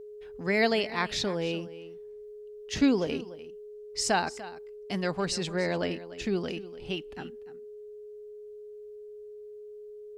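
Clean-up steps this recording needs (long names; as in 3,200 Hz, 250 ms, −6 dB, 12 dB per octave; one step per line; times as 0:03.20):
notch filter 420 Hz, Q 30
echo removal 294 ms −16.5 dB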